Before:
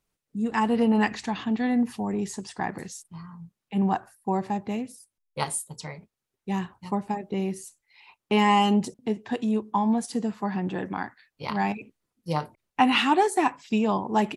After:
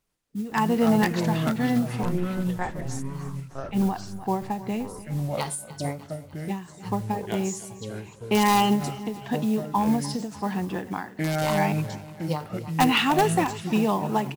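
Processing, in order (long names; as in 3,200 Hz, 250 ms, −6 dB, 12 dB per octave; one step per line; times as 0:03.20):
0:05.41–0:05.85: steady tone 1,500 Hz −54 dBFS
in parallel at −4 dB: wrap-around overflow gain 11.5 dB
on the sum: noise that follows the level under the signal 24 dB
0:02.03–0:02.87: one-pitch LPC vocoder at 8 kHz 180 Hz
delay with pitch and tempo change per echo 96 ms, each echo −5 semitones, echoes 2, each echo −6 dB
repeating echo 299 ms, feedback 51%, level −17.5 dB
every ending faded ahead of time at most 130 dB per second
level −3.5 dB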